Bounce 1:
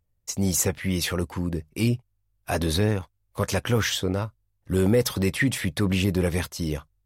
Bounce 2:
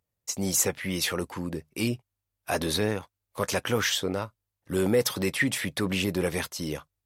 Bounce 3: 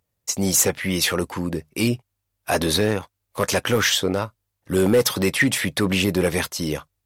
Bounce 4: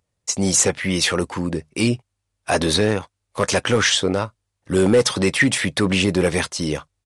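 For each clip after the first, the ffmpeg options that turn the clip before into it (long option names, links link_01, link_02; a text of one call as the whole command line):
ffmpeg -i in.wav -af "highpass=frequency=300:poles=1" out.wav
ffmpeg -i in.wav -af "volume=18dB,asoftclip=hard,volume=-18dB,volume=7dB" out.wav
ffmpeg -i in.wav -af "aresample=22050,aresample=44100,volume=2dB" out.wav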